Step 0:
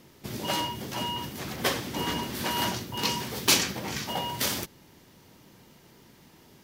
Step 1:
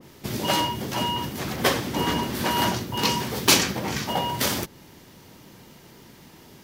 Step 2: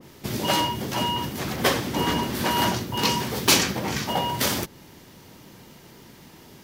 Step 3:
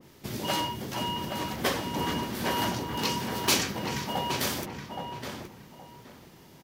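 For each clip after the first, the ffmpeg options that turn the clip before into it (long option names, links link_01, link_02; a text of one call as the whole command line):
ffmpeg -i in.wav -af "adynamicequalizer=threshold=0.00631:dfrequency=1800:dqfactor=0.7:tfrequency=1800:tqfactor=0.7:attack=5:release=100:ratio=0.375:range=2:mode=cutabove:tftype=highshelf,volume=6.5dB" out.wav
ffmpeg -i in.wav -af "acontrast=60,volume=-5.5dB" out.wav
ffmpeg -i in.wav -filter_complex "[0:a]asplit=2[link_01][link_02];[link_02]adelay=821,lowpass=frequency=2400:poles=1,volume=-5dB,asplit=2[link_03][link_04];[link_04]adelay=821,lowpass=frequency=2400:poles=1,volume=0.24,asplit=2[link_05][link_06];[link_06]adelay=821,lowpass=frequency=2400:poles=1,volume=0.24[link_07];[link_01][link_03][link_05][link_07]amix=inputs=4:normalize=0,volume=-6.5dB" out.wav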